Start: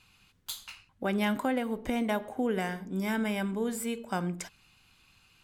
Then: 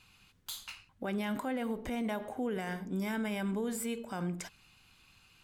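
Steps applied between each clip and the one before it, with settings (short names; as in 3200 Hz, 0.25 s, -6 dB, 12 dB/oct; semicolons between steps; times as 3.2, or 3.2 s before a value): limiter -27.5 dBFS, peak gain reduction 9 dB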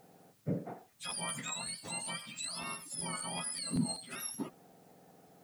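spectrum mirrored in octaves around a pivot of 1400 Hz; added noise white -71 dBFS; crackling interface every 0.19 s, samples 512, repeat, from 0.9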